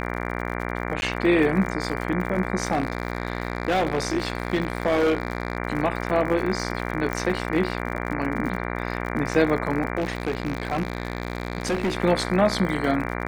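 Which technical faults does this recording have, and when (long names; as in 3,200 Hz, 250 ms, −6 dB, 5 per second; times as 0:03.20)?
mains buzz 60 Hz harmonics 39 −29 dBFS
surface crackle 64 per second −31 dBFS
0:01.01–0:01.02: drop-out 11 ms
0:02.71–0:05.57: clipping −17 dBFS
0:07.13: click −13 dBFS
0:09.98–0:11.97: clipping −20 dBFS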